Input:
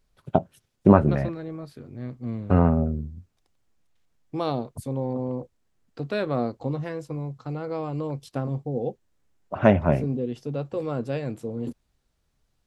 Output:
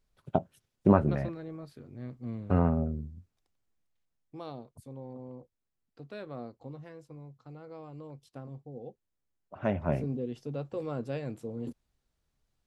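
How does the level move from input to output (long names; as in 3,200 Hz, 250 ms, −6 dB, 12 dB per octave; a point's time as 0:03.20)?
0:03.14 −6.5 dB
0:04.51 −15.5 dB
0:09.55 −15.5 dB
0:09.98 −6.5 dB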